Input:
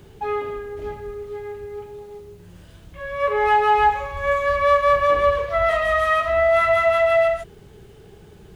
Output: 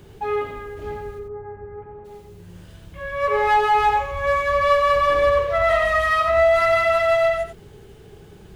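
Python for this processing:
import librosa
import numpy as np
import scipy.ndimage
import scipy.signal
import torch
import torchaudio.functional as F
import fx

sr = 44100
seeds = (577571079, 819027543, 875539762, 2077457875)

p1 = fx.lowpass(x, sr, hz=fx.line((1.18, 1200.0), (2.04, 1900.0)), slope=24, at=(1.18, 2.04), fade=0.02)
p2 = 10.0 ** (-16.0 / 20.0) * (np.abs((p1 / 10.0 ** (-16.0 / 20.0) + 3.0) % 4.0 - 2.0) - 1.0)
p3 = p1 + F.gain(torch.from_numpy(p2), -8.5).numpy()
p4 = p3 + 10.0 ** (-5.5 / 20.0) * np.pad(p3, (int(91 * sr / 1000.0), 0))[:len(p3)]
y = F.gain(torch.from_numpy(p4), -2.5).numpy()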